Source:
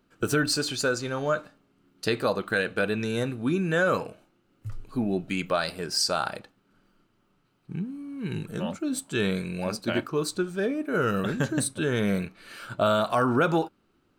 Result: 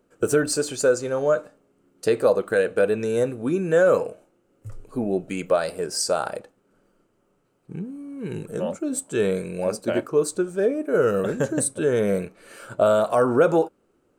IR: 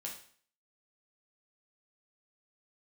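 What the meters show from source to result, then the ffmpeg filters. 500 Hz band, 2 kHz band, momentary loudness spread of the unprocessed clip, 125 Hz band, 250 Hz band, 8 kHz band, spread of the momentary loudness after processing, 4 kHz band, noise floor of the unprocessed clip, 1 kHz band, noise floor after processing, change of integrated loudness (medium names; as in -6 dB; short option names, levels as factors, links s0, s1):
+8.0 dB, -1.5 dB, 11 LU, -1.0 dB, +1.0 dB, +4.5 dB, 14 LU, -4.5 dB, -69 dBFS, +0.5 dB, -67 dBFS, +4.5 dB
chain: -af "equalizer=f=500:t=o:w=1:g=12,equalizer=f=4000:t=o:w=1:g=-7,equalizer=f=8000:t=o:w=1:g=9,volume=0.794"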